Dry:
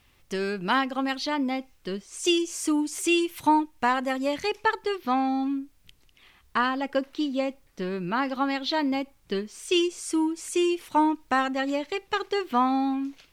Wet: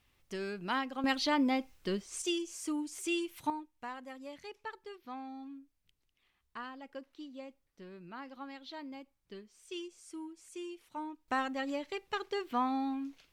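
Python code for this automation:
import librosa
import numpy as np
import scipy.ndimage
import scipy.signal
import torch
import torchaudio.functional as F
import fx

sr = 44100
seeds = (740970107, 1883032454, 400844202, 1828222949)

y = fx.gain(x, sr, db=fx.steps((0.0, -10.0), (1.04, -2.0), (2.22, -11.0), (3.5, -19.5), (11.28, -9.0)))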